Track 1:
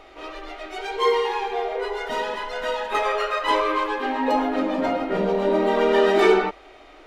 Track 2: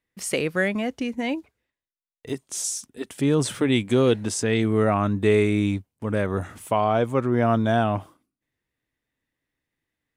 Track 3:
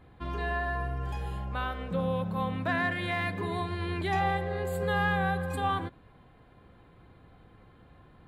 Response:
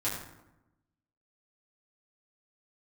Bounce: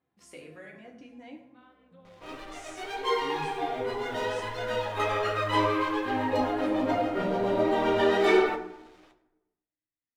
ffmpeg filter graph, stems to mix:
-filter_complex "[0:a]aeval=exprs='sgn(val(0))*max(abs(val(0))-0.00376,0)':c=same,adelay=2050,volume=0.75,asplit=2[s0][s1];[s1]volume=0.266[s2];[1:a]volume=0.106,asplit=3[s3][s4][s5];[s4]volume=0.473[s6];[2:a]volume=0.106,asplit=2[s7][s8];[s8]volume=0.0708[s9];[s5]apad=whole_len=365129[s10];[s7][s10]sidechaincompress=threshold=0.00355:ratio=8:attack=16:release=691[s11];[s3][s11]amix=inputs=2:normalize=0,highpass=160,lowpass=7600,acompressor=threshold=0.00562:ratio=6,volume=1[s12];[3:a]atrim=start_sample=2205[s13];[s2][s6][s9]amix=inputs=3:normalize=0[s14];[s14][s13]afir=irnorm=-1:irlink=0[s15];[s0][s12][s15]amix=inputs=3:normalize=0,flanger=delay=7.2:depth=5.2:regen=-40:speed=1.3:shape=triangular"

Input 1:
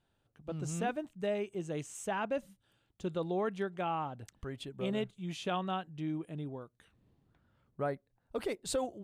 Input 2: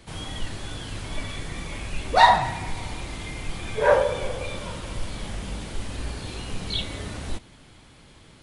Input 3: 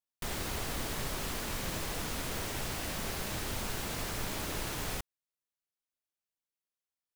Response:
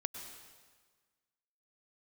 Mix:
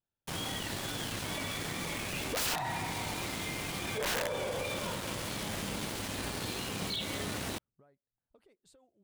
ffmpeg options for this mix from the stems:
-filter_complex "[0:a]acompressor=threshold=0.00708:ratio=12,volume=0.126[s0];[1:a]highpass=130,aeval=exprs='(mod(5.96*val(0)+1,2)-1)/5.96':c=same,adelay=200,volume=1.33[s1];[2:a]volume=0.188[s2];[s1][s2]amix=inputs=2:normalize=0,aeval=exprs='val(0)*gte(abs(val(0)),0.0178)':c=same,alimiter=limit=0.075:level=0:latency=1:release=141,volume=1[s3];[s0][s3]amix=inputs=2:normalize=0,alimiter=level_in=1.41:limit=0.0631:level=0:latency=1:release=22,volume=0.708"

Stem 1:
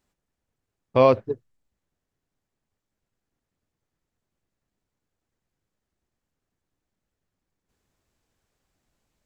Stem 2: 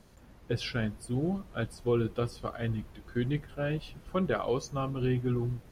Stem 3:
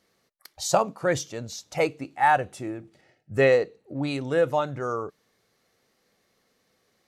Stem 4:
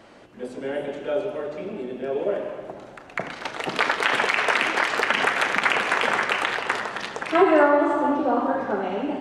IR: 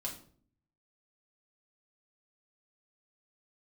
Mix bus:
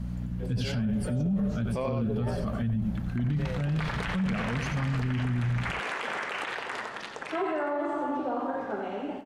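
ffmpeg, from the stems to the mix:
-filter_complex "[0:a]acompressor=threshold=0.158:ratio=6,adelay=800,volume=1,asplit=2[s0][s1];[s1]volume=0.708[s2];[1:a]aeval=exprs='val(0)+0.00562*(sin(2*PI*60*n/s)+sin(2*PI*2*60*n/s)/2+sin(2*PI*3*60*n/s)/3+sin(2*PI*4*60*n/s)/4+sin(2*PI*5*60*n/s)/5)':c=same,lowshelf=f=280:t=q:w=3:g=10,volume=1.19,asplit=2[s3][s4];[s4]volume=0.398[s5];[2:a]volume=0.106[s6];[3:a]volume=0.398,asplit=2[s7][s8];[s8]volume=0.316[s9];[s2][s5][s9]amix=inputs=3:normalize=0,aecho=0:1:90:1[s10];[s0][s3][s6][s7][s10]amix=inputs=5:normalize=0,alimiter=limit=0.0794:level=0:latency=1:release=33"

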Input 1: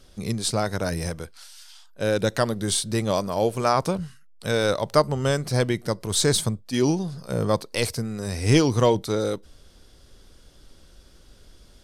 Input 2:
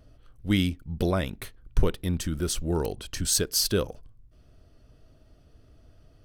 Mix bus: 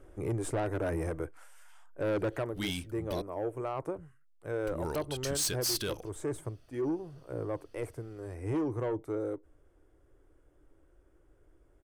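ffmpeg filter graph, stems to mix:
-filter_complex "[0:a]firequalizer=gain_entry='entry(140,0);entry(210,-16);entry(300,9);entry(480,3);entry(2100,-4);entry(4200,-28);entry(7400,-11)':delay=0.05:min_phase=1,volume=0.841,afade=t=out:st=2.2:d=0.32:silence=0.281838[s0];[1:a]tiltshelf=f=870:g=-6,adelay=2100,volume=0.596,asplit=3[s1][s2][s3];[s1]atrim=end=3.22,asetpts=PTS-STARTPTS,afade=t=out:st=3.216:d=0.004:c=hsin[s4];[s2]atrim=start=3.22:end=4.67,asetpts=PTS-STARTPTS,volume=0[s5];[s3]atrim=start=4.67,asetpts=PTS-STARTPTS,afade=t=in:d=0.004:c=hsin[s6];[s4][s5][s6]concat=n=3:v=0:a=1[s7];[s0][s7]amix=inputs=2:normalize=0,asoftclip=type=tanh:threshold=0.0668,alimiter=level_in=1.33:limit=0.0631:level=0:latency=1:release=34,volume=0.75"

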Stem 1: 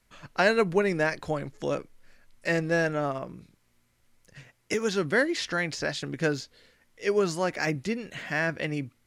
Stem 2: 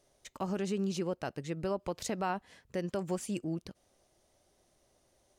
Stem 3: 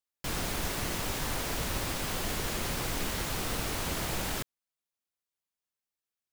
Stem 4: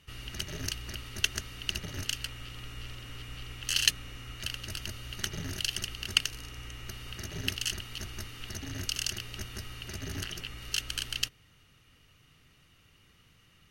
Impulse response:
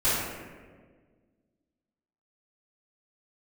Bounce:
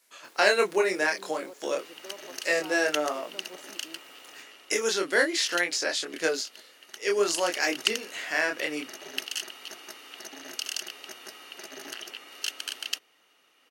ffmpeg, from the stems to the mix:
-filter_complex "[0:a]flanger=delay=22.5:depth=4.3:speed=0.52,highshelf=f=3900:g=11.5,volume=1.41[s0];[1:a]adelay=400,volume=0.299[s1];[2:a]alimiter=level_in=2.24:limit=0.0631:level=0:latency=1,volume=0.447,volume=0.168[s2];[3:a]equalizer=f=750:w=1.5:g=7,adelay=1700,volume=2.24,afade=t=out:st=4.31:d=0.58:silence=0.421697,afade=t=in:st=7.18:d=0.39:silence=0.316228[s3];[s0][s1][s2][s3]amix=inputs=4:normalize=0,highpass=f=310:w=0.5412,highpass=f=310:w=1.3066"

